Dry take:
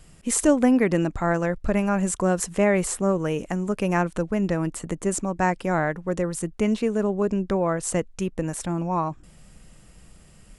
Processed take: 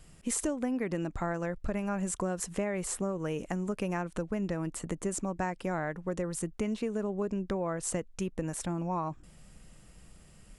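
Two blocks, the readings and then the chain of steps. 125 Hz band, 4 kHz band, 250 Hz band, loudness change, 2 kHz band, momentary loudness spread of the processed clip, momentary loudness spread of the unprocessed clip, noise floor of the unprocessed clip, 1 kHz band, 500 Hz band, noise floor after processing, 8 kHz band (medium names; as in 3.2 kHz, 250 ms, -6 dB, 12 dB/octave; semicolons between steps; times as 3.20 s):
-9.0 dB, -8.0 dB, -10.0 dB, -9.5 dB, -10.5 dB, 3 LU, 8 LU, -51 dBFS, -10.0 dB, -10.0 dB, -56 dBFS, -7.5 dB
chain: compression 6:1, threshold -24 dBFS, peak gain reduction 11.5 dB; trim -4.5 dB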